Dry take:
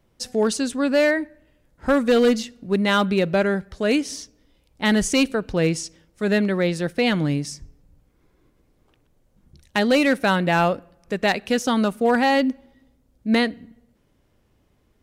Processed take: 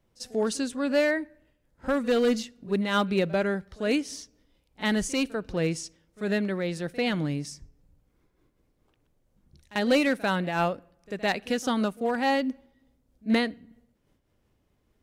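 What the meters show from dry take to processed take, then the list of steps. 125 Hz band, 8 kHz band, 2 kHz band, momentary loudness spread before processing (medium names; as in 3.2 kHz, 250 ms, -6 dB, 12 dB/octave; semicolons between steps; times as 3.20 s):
-6.5 dB, -6.5 dB, -6.5 dB, 12 LU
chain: pre-echo 44 ms -20 dB; random flutter of the level, depth 65%; trim -3 dB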